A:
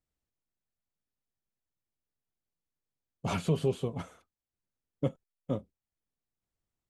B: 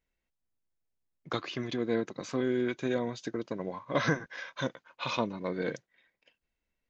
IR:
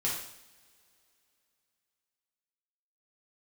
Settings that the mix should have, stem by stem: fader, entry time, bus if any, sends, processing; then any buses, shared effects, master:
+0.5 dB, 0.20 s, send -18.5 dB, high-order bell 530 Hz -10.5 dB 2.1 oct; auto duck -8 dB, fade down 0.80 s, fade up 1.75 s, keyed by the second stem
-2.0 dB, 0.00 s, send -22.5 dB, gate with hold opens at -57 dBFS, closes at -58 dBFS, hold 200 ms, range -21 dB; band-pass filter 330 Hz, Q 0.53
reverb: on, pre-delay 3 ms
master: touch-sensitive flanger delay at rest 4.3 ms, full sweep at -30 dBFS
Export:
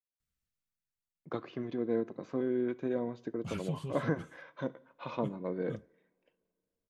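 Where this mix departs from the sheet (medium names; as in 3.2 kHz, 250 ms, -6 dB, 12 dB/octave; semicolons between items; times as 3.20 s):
stem A: send off; master: missing touch-sensitive flanger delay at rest 4.3 ms, full sweep at -30 dBFS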